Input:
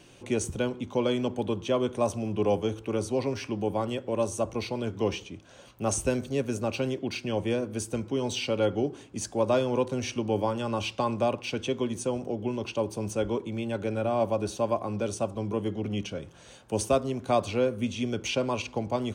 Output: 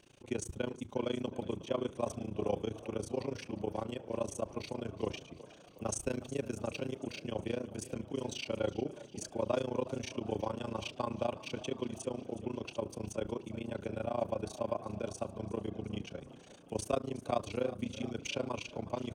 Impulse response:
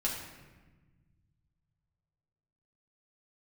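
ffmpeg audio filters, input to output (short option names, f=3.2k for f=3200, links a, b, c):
-filter_complex "[0:a]tremolo=f=28:d=0.974,asplit=7[a][b][c][d][e][f][g];[b]adelay=365,afreqshift=34,volume=-17dB[h];[c]adelay=730,afreqshift=68,volume=-21.6dB[i];[d]adelay=1095,afreqshift=102,volume=-26.2dB[j];[e]adelay=1460,afreqshift=136,volume=-30.7dB[k];[f]adelay=1825,afreqshift=170,volume=-35.3dB[l];[g]adelay=2190,afreqshift=204,volume=-39.9dB[m];[a][h][i][j][k][l][m]amix=inputs=7:normalize=0,volume=-5dB"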